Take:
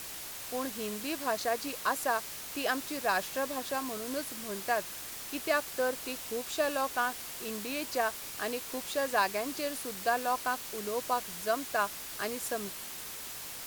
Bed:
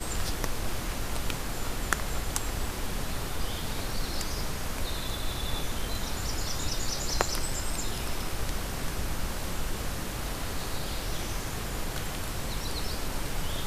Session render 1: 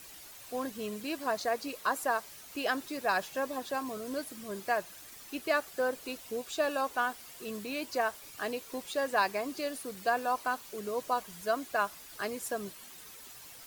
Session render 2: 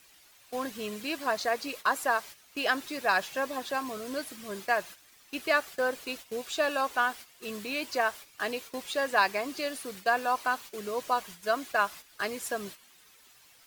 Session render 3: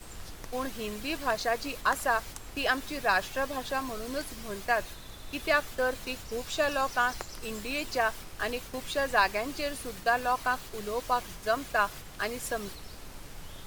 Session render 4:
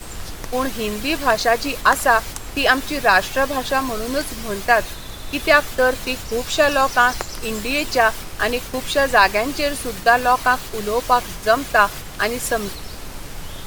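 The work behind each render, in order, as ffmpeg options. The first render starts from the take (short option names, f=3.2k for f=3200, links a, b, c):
-af "afftdn=nr=10:nf=-43"
-af "agate=range=-11dB:threshold=-45dB:ratio=16:detection=peak,equalizer=f=2.5k:w=0.43:g=6"
-filter_complex "[1:a]volume=-13dB[a];[0:a][a]amix=inputs=2:normalize=0"
-af "volume=12dB,alimiter=limit=-1dB:level=0:latency=1"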